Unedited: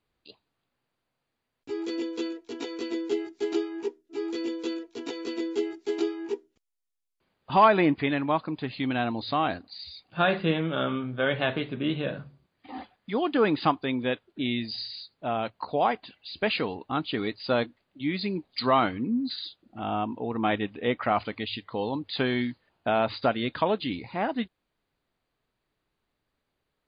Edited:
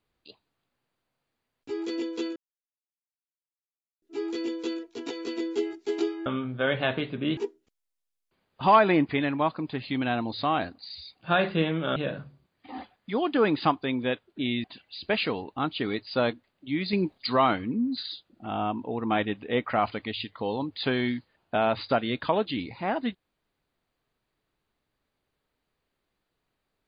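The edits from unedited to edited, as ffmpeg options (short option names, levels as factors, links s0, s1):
-filter_complex "[0:a]asplit=9[s0][s1][s2][s3][s4][s5][s6][s7][s8];[s0]atrim=end=2.36,asetpts=PTS-STARTPTS,afade=t=out:st=2.356:d=0.004:c=hsin[s9];[s1]atrim=start=2.36:end=4.02,asetpts=PTS-STARTPTS,volume=0[s10];[s2]atrim=start=4.02:end=6.262,asetpts=PTS-STARTPTS,afade=t=in:d=0.004:c=hsin[s11];[s3]atrim=start=10.848:end=11.962[s12];[s4]atrim=start=6.258:end=10.852[s13];[s5]atrim=start=11.958:end=14.642[s14];[s6]atrim=start=15.968:end=18.262[s15];[s7]atrim=start=18.258:end=18.512,asetpts=PTS-STARTPTS,volume=1.78[s16];[s8]atrim=start=18.508[s17];[s9][s10][s11]concat=n=3:v=0:a=1[s18];[s18][s12]acrossfade=d=0.004:c1=hsin:c2=hsin[s19];[s19][s13]acrossfade=d=0.004:c1=hsin:c2=hsin[s20];[s20][s14]acrossfade=d=0.004:c1=hsin:c2=hsin[s21];[s21][s15]acrossfade=d=0.004:c1=hsin:c2=hsin[s22];[s22][s16]acrossfade=d=0.004:c1=hsin:c2=hsin[s23];[s23][s17]acrossfade=d=0.004:c1=hsin:c2=hsin"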